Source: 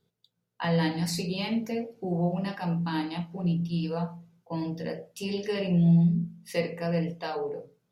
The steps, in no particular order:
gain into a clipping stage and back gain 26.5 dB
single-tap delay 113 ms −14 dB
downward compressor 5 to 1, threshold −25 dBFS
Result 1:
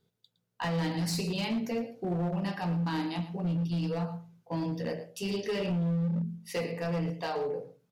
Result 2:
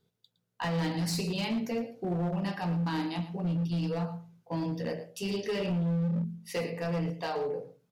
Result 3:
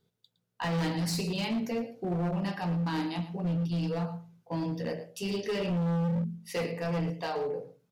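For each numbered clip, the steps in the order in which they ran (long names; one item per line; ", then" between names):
single-tap delay, then downward compressor, then gain into a clipping stage and back
downward compressor, then single-tap delay, then gain into a clipping stage and back
single-tap delay, then gain into a clipping stage and back, then downward compressor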